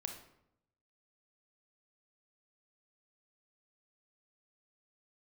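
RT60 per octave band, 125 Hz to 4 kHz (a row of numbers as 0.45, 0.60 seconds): 1.1, 0.90, 0.80, 0.75, 0.60, 0.50 seconds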